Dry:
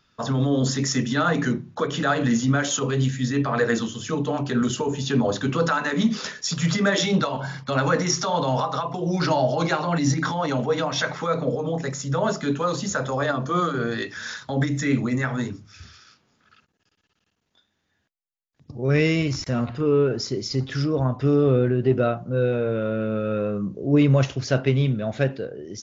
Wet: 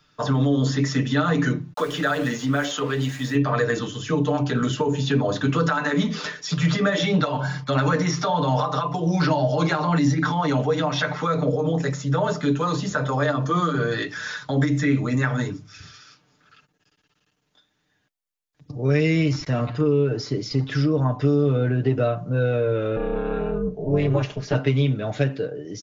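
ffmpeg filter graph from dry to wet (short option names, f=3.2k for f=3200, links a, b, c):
-filter_complex "[0:a]asettb=1/sr,asplit=3[a][b][c];[a]atrim=end=1.734[d];[b]atrim=start=1.73:end=3.35,asetpts=PTS-STARTPTS,afade=t=in:d=0.004:c=qsin,afade=t=out:st=1.616:d=0.004:c=qsin,highpass=f=340:p=1,aeval=exprs='val(0)*gte(abs(val(0)),0.0133)':c=same[e];[c]atrim=start=3.346[f];[d][e]acrossfade=d=0.004:c1=hsin:c2=qsin[g];[g][f]acrossfade=d=0.004:c1=qsin:c2=hsin,asettb=1/sr,asplit=3[h][i][j];[h]atrim=end=22.964[k];[i]atrim=start=22.96:end=24.55,asetpts=PTS-STARTPTS,afade=t=in:d=0.004:c=qsin,afade=t=out:st=1.586:d=0.004:c=qsin,aecho=1:1:4.9:0.81,atrim=end_sample=70119,tremolo=f=250:d=0.974,lowpass=f=3.4k:p=1[l];[j]atrim=start=24.546[m];[k][l]acrossfade=d=0.004:c1=hsin:c2=qsin[n];[n][m]acrossfade=d=0.004:c1=qsin:c2=hsin,aecho=1:1:6.7:0.68,acrossover=split=200|4300[o][p][q];[o]acompressor=threshold=-24dB:ratio=4[r];[p]acompressor=threshold=-21dB:ratio=4[s];[q]acompressor=threshold=-46dB:ratio=4[t];[r][s][t]amix=inputs=3:normalize=0,volume=1.5dB"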